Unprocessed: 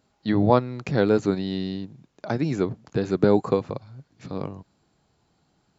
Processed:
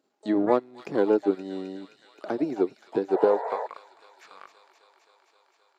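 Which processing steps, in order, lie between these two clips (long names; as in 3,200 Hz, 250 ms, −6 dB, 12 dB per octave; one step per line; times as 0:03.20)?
dynamic equaliser 3,900 Hz, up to −6 dB, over −46 dBFS, Q 0.74
transient designer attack +3 dB, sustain −11 dB
high-pass filter sweep 330 Hz → 1,500 Hz, 0:03.08–0:03.86
sound drawn into the spectrogram noise, 0:03.12–0:03.67, 410–1,000 Hz −25 dBFS
on a send: delay with a high-pass on its return 262 ms, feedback 78%, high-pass 2,500 Hz, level −6.5 dB
on the sum: pitch-shifted copies added +12 semitones −16 dB
level −7 dB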